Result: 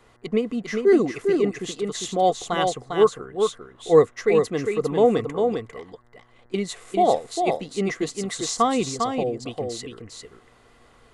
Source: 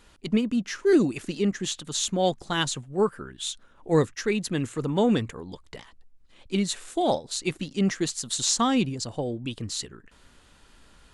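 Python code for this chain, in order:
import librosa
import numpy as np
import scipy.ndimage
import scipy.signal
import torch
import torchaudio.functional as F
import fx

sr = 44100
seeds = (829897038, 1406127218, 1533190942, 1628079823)

p1 = fx.transient(x, sr, attack_db=-11, sustain_db=-7, at=(5.66, 6.54))
p2 = fx.small_body(p1, sr, hz=(470.0, 710.0, 1100.0, 2000.0), ring_ms=25, db=14)
p3 = p2 + fx.echo_single(p2, sr, ms=401, db=-5.0, dry=0)
p4 = fx.dmg_buzz(p3, sr, base_hz=120.0, harmonics=17, level_db=-57.0, tilt_db=-4, odd_only=False)
y = p4 * librosa.db_to_amplitude(-5.0)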